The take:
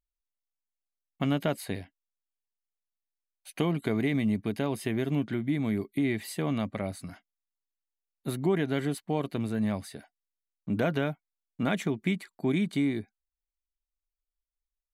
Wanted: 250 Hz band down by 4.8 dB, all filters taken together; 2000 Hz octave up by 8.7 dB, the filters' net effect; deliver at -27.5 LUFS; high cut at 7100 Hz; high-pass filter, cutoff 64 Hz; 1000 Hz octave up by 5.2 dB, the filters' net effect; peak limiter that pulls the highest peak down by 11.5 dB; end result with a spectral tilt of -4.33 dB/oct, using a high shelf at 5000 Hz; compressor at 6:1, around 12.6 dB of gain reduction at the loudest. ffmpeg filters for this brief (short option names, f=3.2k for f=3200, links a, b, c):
-af "highpass=64,lowpass=7.1k,equalizer=f=250:t=o:g=-6.5,equalizer=f=1k:t=o:g=5,equalizer=f=2k:t=o:g=8.5,highshelf=f=5k:g=4.5,acompressor=threshold=-35dB:ratio=6,volume=15.5dB,alimiter=limit=-14.5dB:level=0:latency=1"